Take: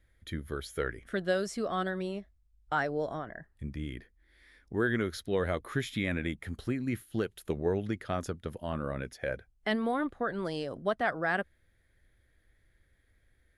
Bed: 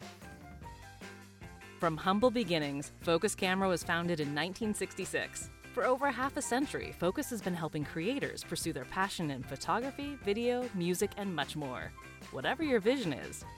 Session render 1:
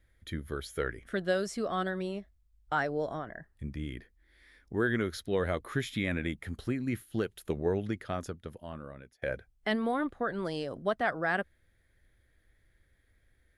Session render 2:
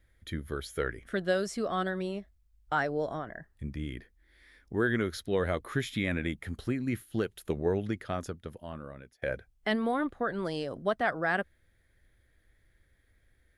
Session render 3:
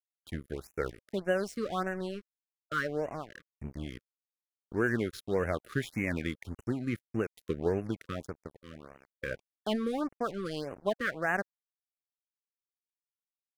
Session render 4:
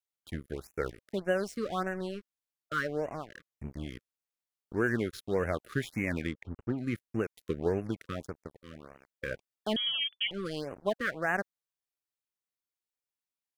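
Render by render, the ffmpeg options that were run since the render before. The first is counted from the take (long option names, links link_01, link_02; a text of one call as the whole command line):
ffmpeg -i in.wav -filter_complex "[0:a]asplit=2[link_01][link_02];[link_01]atrim=end=9.22,asetpts=PTS-STARTPTS,afade=type=out:start_time=7.84:duration=1.38:silence=0.0891251[link_03];[link_02]atrim=start=9.22,asetpts=PTS-STARTPTS,afade=type=in:duration=0.004:curve=hsin:silence=0.0891251[link_04];[link_03][link_04]concat=n=2:v=0:a=1" out.wav
ffmpeg -i in.wav -af "volume=1dB" out.wav
ffmpeg -i in.wav -af "aeval=exprs='sgn(val(0))*max(abs(val(0))-0.00708,0)':channel_layout=same,afftfilt=real='re*(1-between(b*sr/1024,730*pow(4200/730,0.5+0.5*sin(2*PI*1.7*pts/sr))/1.41,730*pow(4200/730,0.5+0.5*sin(2*PI*1.7*pts/sr))*1.41))':imag='im*(1-between(b*sr/1024,730*pow(4200/730,0.5+0.5*sin(2*PI*1.7*pts/sr))/1.41,730*pow(4200/730,0.5+0.5*sin(2*PI*1.7*pts/sr))*1.41))':win_size=1024:overlap=0.75" out.wav
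ffmpeg -i in.wav -filter_complex "[0:a]asplit=3[link_01][link_02][link_03];[link_01]afade=type=out:start_time=6.26:duration=0.02[link_04];[link_02]adynamicsmooth=sensitivity=5.5:basefreq=1800,afade=type=in:start_time=6.26:duration=0.02,afade=type=out:start_time=6.77:duration=0.02[link_05];[link_03]afade=type=in:start_time=6.77:duration=0.02[link_06];[link_04][link_05][link_06]amix=inputs=3:normalize=0,asettb=1/sr,asplit=3[link_07][link_08][link_09];[link_07]atrim=end=9.764[link_10];[link_08]atrim=start=9.76:end=10.31,asetpts=PTS-STARTPTS,afade=type=in:duration=0.004:curve=qsin,afade=type=out:start_time=0.546:duration=0.004:curve=qsin,lowpass=frequency=3000:width_type=q:width=0.5098,lowpass=frequency=3000:width_type=q:width=0.6013,lowpass=frequency=3000:width_type=q:width=0.9,lowpass=frequency=3000:width_type=q:width=2.563,afreqshift=-3500[link_11];[link_09]atrim=start=10.306[link_12];[link_10][link_11]acrossfade=duration=0.004:curve1=hsin:curve2=qsin[link_13];[link_13][link_12]acrossfade=duration=0.004:curve1=qsin:curve2=hsin" out.wav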